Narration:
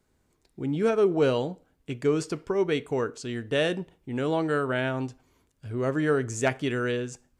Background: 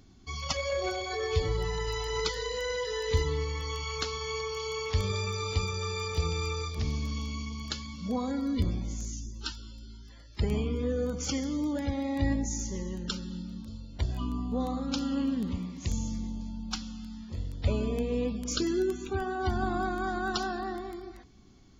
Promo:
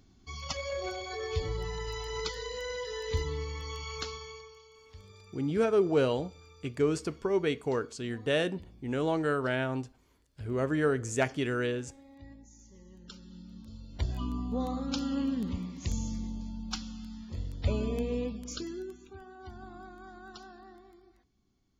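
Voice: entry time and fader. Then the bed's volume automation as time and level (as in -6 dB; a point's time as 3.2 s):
4.75 s, -3.0 dB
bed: 4.09 s -4.5 dB
4.69 s -23 dB
12.54 s -23 dB
13.96 s -1.5 dB
18.09 s -1.5 dB
19.17 s -17 dB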